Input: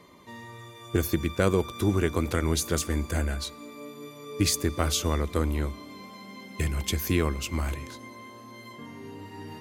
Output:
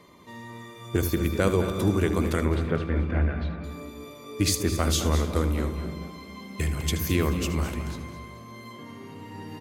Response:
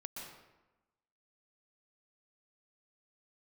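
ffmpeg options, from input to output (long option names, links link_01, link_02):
-filter_complex "[0:a]asettb=1/sr,asplit=3[link_01][link_02][link_03];[link_01]atrim=end=2.454[link_04];[link_02]atrim=start=2.45:end=3.64,asetpts=PTS-STARTPTS,afade=type=in:duration=0.004:curve=qsin,afade=type=out:start_time=1.186:duration=0.004:curve=qsin,lowpass=frequency=2700:width=0.5412,lowpass=frequency=2700:width=1.3066[link_05];[link_03]atrim=start=3.636[link_06];[link_04][link_05]acrossfade=duration=0.004:curve1=hsin:curve2=qsin[link_07];[link_07][link_06]acrossfade=duration=0.004:curve1=qsin:curve2=hsin,asplit=4[link_08][link_09][link_10][link_11];[link_09]adelay=217,afreqshift=95,volume=-14.5dB[link_12];[link_10]adelay=434,afreqshift=190,volume=-23.6dB[link_13];[link_11]adelay=651,afreqshift=285,volume=-32.7dB[link_14];[link_08][link_12][link_13][link_14]amix=inputs=4:normalize=0,asplit=2[link_15][link_16];[1:a]atrim=start_sample=2205,lowshelf=frequency=300:gain=10,adelay=77[link_17];[link_16][link_17]afir=irnorm=-1:irlink=0,volume=-7dB[link_18];[link_15][link_18]amix=inputs=2:normalize=0"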